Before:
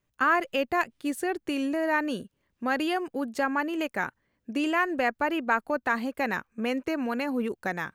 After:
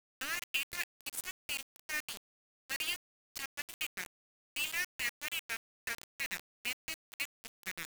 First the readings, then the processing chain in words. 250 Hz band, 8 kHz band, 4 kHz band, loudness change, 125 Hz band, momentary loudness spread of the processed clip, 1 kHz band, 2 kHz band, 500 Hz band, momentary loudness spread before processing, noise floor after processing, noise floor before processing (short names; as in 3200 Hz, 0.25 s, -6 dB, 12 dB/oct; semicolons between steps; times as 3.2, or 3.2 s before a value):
-31.0 dB, +5.5 dB, +0.5 dB, -10.5 dB, -15.5 dB, 9 LU, -23.5 dB, -9.0 dB, -28.0 dB, 6 LU, under -85 dBFS, -78 dBFS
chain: inverse Chebyshev band-stop 340–940 Hz, stop band 60 dB; requantised 6-bit, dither none